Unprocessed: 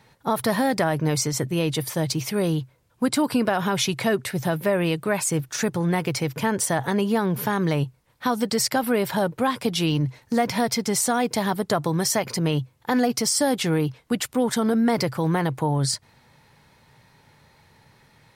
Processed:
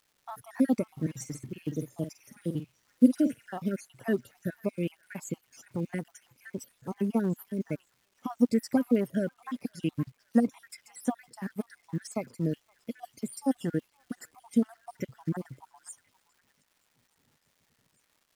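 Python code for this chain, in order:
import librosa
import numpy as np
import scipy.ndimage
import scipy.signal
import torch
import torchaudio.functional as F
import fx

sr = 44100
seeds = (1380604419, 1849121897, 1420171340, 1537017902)

y = fx.spec_dropout(x, sr, seeds[0], share_pct=62)
y = fx.graphic_eq_15(y, sr, hz=(250, 1000, 4000), db=(10, -5, -12))
y = fx.dmg_crackle(y, sr, seeds[1], per_s=550.0, level_db=-39.0)
y = fx.doubler(y, sr, ms=49.0, db=-7, at=(0.96, 3.58), fade=0.02)
y = fx.echo_stepped(y, sr, ms=520, hz=1400.0, octaves=0.7, feedback_pct=70, wet_db=-11.5)
y = fx.upward_expand(y, sr, threshold_db=-39.0, expansion=1.5)
y = F.gain(torch.from_numpy(y), -3.5).numpy()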